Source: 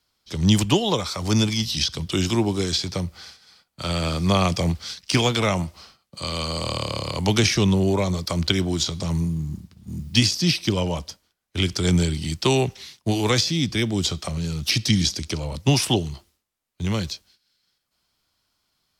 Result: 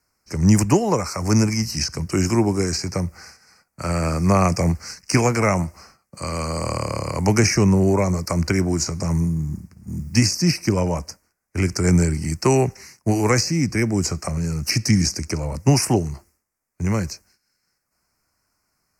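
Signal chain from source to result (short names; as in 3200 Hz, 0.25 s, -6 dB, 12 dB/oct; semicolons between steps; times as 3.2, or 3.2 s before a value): Chebyshev band-stop 2100–5600 Hz, order 2; gain +4 dB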